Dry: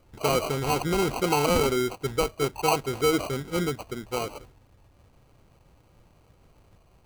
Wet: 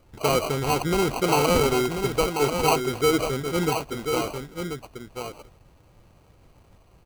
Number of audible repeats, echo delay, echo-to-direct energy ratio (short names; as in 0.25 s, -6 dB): 1, 1.039 s, -6.5 dB